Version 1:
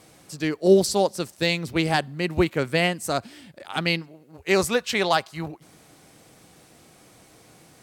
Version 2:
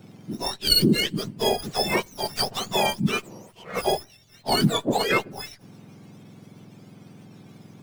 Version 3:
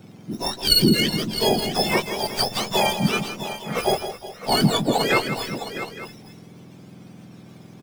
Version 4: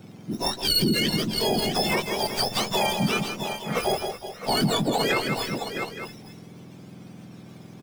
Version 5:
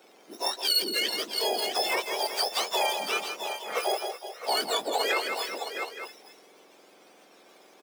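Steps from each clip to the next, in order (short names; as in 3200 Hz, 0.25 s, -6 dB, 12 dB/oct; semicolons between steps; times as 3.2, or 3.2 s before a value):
spectrum mirrored in octaves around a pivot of 1300 Hz; running maximum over 3 samples; gain +1.5 dB
tapped delay 0.163/0.368/0.661/0.868 s -10/-16/-11.5/-17 dB; gain +2 dB
limiter -14 dBFS, peak gain reduction 9 dB
HPF 420 Hz 24 dB/oct; gain -2 dB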